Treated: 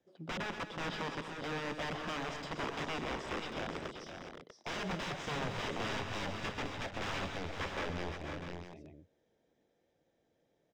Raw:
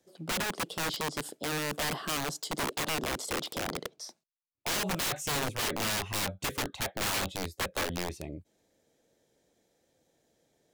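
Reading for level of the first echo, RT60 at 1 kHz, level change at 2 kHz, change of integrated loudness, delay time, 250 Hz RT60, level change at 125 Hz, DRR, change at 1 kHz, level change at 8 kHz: -12.0 dB, no reverb, -5.0 dB, -7.0 dB, 122 ms, no reverb, -3.5 dB, no reverb, -4.0 dB, -17.5 dB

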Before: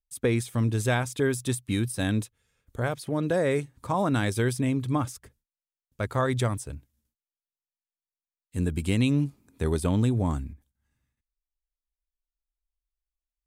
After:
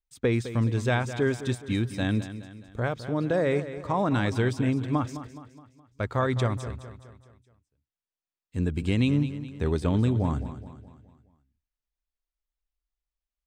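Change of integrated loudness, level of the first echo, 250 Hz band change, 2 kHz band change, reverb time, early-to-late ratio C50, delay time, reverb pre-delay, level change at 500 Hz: 0.0 dB, -12.5 dB, +0.5 dB, 0.0 dB, no reverb, no reverb, 210 ms, no reverb, 0.0 dB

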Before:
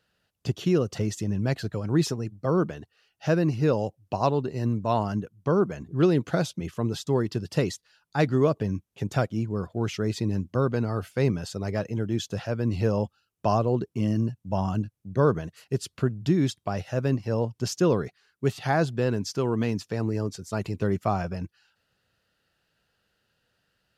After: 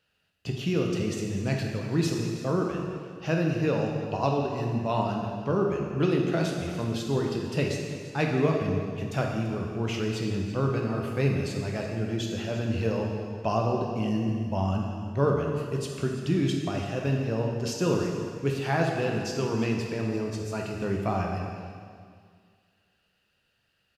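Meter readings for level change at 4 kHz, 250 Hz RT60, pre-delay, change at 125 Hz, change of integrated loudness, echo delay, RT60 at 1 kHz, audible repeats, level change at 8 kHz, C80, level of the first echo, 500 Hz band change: +0.5 dB, 2.0 s, 5 ms, -1.5 dB, -1.5 dB, 338 ms, 2.0 s, 1, -1.0 dB, 3.5 dB, -15.0 dB, -1.5 dB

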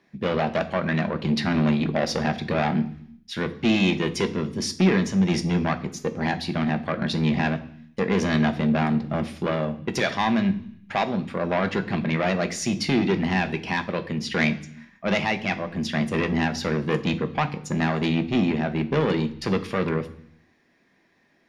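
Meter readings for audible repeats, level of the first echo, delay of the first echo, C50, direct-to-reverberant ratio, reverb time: no echo, no echo, no echo, 15.5 dB, 8.0 dB, 0.65 s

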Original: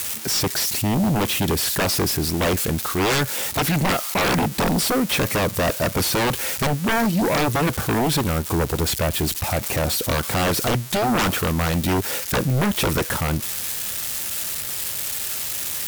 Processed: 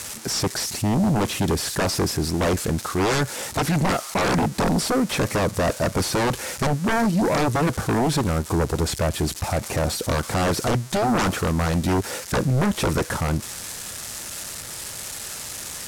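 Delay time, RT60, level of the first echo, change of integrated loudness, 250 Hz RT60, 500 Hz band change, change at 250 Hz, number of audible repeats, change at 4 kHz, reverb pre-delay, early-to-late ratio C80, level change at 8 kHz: no echo, no reverb, no echo, -2.0 dB, no reverb, 0.0 dB, 0.0 dB, no echo, -4.0 dB, no reverb, no reverb, -3.5 dB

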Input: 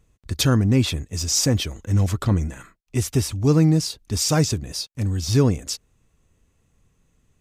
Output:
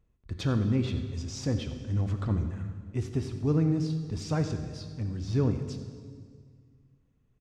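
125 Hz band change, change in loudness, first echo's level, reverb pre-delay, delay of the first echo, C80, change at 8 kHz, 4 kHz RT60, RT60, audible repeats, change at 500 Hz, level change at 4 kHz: -8.0 dB, -9.0 dB, -16.0 dB, 13 ms, 89 ms, 9.5 dB, -22.0 dB, 1.7 s, 1.9 s, 1, -8.5 dB, -17.5 dB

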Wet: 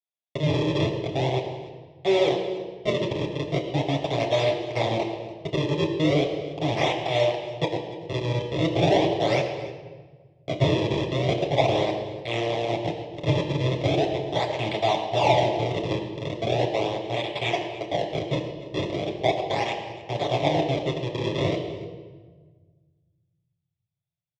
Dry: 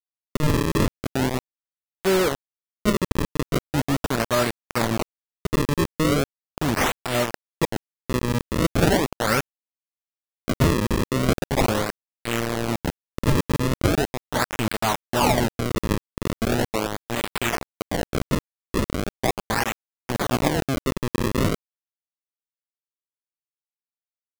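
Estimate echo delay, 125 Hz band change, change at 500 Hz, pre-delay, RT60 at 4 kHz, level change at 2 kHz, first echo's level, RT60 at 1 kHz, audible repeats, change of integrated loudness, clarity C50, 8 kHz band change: 291 ms, -1.0 dB, +2.5 dB, 8 ms, 1.1 s, -4.0 dB, -18.0 dB, 1.3 s, 1, -1.0 dB, 7.0 dB, -13.5 dB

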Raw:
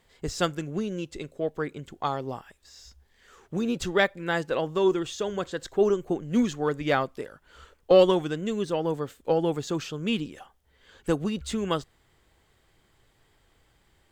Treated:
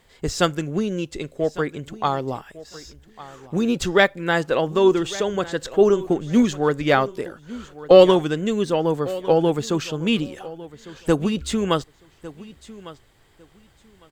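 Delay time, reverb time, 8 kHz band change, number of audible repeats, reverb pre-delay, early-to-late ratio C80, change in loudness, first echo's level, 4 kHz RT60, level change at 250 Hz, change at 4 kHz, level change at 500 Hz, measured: 1153 ms, no reverb, +6.5 dB, 2, no reverb, no reverb, +6.5 dB, -18.0 dB, no reverb, +6.5 dB, +6.5 dB, +6.5 dB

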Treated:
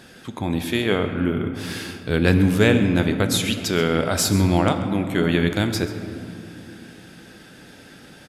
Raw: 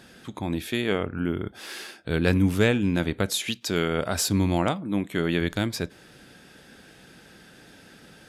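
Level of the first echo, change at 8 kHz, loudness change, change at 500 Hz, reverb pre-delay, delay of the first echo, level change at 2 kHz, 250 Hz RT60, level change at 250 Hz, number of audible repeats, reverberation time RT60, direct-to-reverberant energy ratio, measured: -16.0 dB, +4.5 dB, +5.0 dB, +5.0 dB, 8 ms, 135 ms, +5.0 dB, 4.0 s, +5.0 dB, 1, 2.5 s, 7.0 dB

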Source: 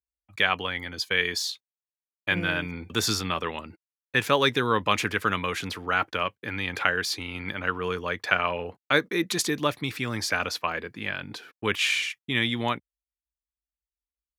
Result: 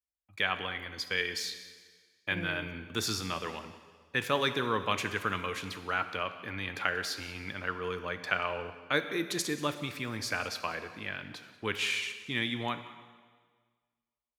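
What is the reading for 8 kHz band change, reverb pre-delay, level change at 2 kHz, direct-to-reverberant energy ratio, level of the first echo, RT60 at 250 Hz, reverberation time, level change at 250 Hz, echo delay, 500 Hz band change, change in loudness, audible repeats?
-6.5 dB, 5 ms, -6.5 dB, 9.0 dB, -19.0 dB, 1.6 s, 1.6 s, -6.5 dB, 184 ms, -6.5 dB, -6.5 dB, 1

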